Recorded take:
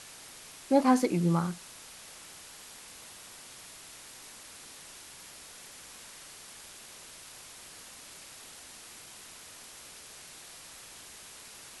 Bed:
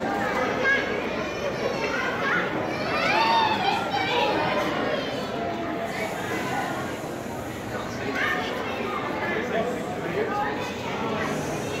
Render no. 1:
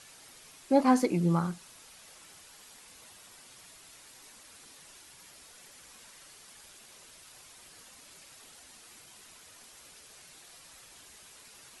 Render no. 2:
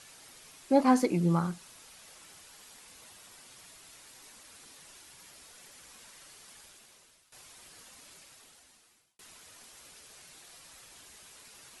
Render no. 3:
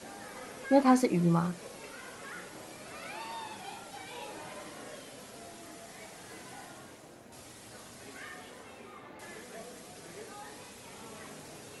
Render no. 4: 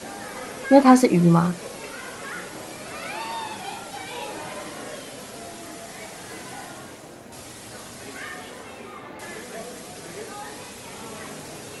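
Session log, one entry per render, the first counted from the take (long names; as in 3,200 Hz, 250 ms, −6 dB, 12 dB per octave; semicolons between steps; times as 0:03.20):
broadband denoise 7 dB, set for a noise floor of −50 dBFS
0:06.55–0:07.32: fade out, to −17 dB; 0:08.07–0:09.19: fade out
mix in bed −21 dB
level +10 dB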